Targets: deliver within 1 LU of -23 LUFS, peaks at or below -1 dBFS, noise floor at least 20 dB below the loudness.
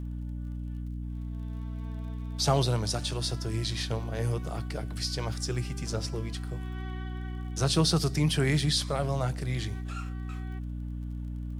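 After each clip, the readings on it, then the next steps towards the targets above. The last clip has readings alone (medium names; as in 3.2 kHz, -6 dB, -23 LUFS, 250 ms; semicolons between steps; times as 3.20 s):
tick rate 34 per s; hum 60 Hz; highest harmonic 300 Hz; hum level -33 dBFS; loudness -31.0 LUFS; peak level -12.0 dBFS; loudness target -23.0 LUFS
-> de-click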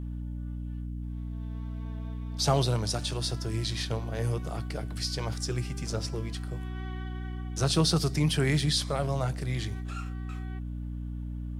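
tick rate 0 per s; hum 60 Hz; highest harmonic 300 Hz; hum level -33 dBFS
-> de-hum 60 Hz, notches 5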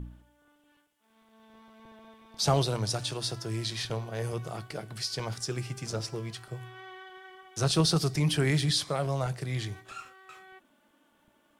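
hum not found; loudness -30.5 LUFS; peak level -12.5 dBFS; loudness target -23.0 LUFS
-> trim +7.5 dB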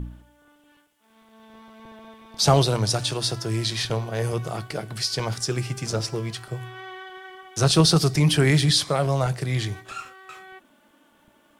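loudness -23.0 LUFS; peak level -5.0 dBFS; noise floor -60 dBFS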